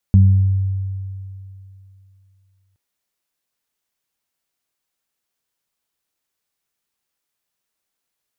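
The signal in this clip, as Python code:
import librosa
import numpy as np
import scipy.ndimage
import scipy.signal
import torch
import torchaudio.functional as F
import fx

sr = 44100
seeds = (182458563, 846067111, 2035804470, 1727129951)

y = fx.additive(sr, length_s=2.62, hz=96.3, level_db=-6, upper_db=(-7,), decay_s=2.8, upper_decays_s=(0.78,))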